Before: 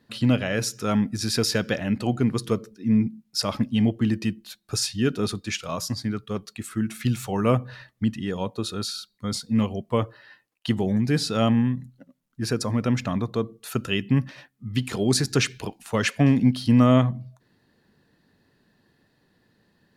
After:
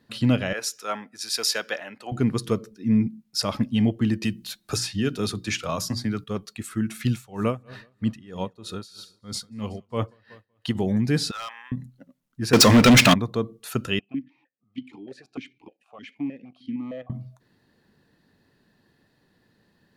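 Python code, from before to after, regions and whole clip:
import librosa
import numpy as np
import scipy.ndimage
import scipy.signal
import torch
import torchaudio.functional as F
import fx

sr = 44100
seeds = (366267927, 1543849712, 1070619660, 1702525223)

y = fx.chain(x, sr, fx.highpass(hz=650.0, slope=12),
    fx.band_widen(depth_pct=70), at=(0.53, 2.12))
y = fx.chain(y, sr, fx.hum_notches(base_hz=60, count=6),
    fx.band_squash(depth_pct=70), at=(4.23, 6.24))
y = fx.chain(y, sr, fx.echo_feedback(ms=188, feedback_pct=50, wet_db=-20.5),
    fx.tremolo_db(hz=3.1, depth_db=19), at=(7.12, 10.75))
y = fx.chain(y, sr, fx.highpass(hz=1000.0, slope=24),
    fx.high_shelf(hz=5200.0, db=-10.5),
    fx.overload_stage(gain_db=30.0), at=(11.31, 11.72))
y = fx.chain(y, sr, fx.weighting(curve='D'),
    fx.leveller(passes=5), at=(12.53, 13.14))
y = fx.chain(y, sr, fx.level_steps(step_db=10),
    fx.clip_hard(threshold_db=-14.0),
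    fx.vowel_held(hz=6.5), at=(13.99, 17.1))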